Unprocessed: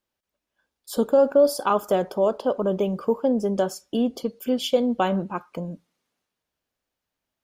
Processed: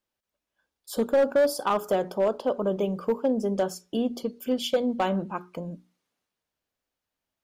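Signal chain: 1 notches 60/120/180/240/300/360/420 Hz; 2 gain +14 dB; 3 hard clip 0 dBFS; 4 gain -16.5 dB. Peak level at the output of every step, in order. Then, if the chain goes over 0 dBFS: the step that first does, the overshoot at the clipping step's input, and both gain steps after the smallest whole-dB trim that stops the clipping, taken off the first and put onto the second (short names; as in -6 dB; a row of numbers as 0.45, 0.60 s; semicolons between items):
-8.0, +6.0, 0.0, -16.5 dBFS; step 2, 6.0 dB; step 2 +8 dB, step 4 -10.5 dB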